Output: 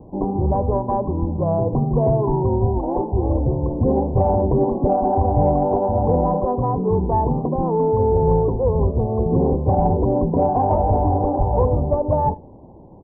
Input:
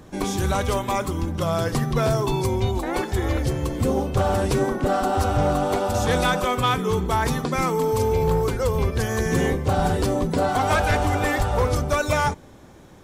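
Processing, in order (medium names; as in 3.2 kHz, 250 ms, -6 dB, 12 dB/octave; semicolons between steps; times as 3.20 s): steep low-pass 1 kHz 96 dB/octave; Chebyshev shaper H 4 -40 dB, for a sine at -11 dBFS; delay 80 ms -22.5 dB; trim +4 dB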